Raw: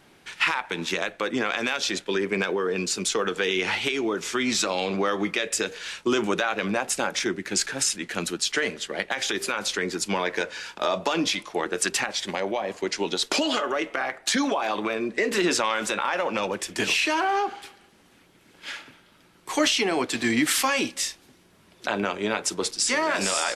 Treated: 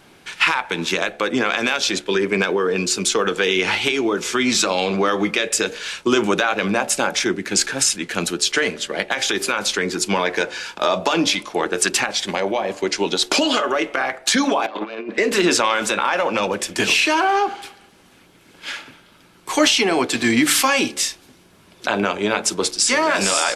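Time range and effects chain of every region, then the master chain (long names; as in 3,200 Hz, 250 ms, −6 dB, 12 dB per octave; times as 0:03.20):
0:14.66–0:15.18: phase distortion by the signal itself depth 0.11 ms + three-way crossover with the lows and the highs turned down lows −15 dB, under 270 Hz, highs −21 dB, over 3,800 Hz + compressor whose output falls as the input rises −34 dBFS, ratio −0.5
whole clip: notch filter 1,900 Hz, Q 19; hum removal 72.52 Hz, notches 12; level +6.5 dB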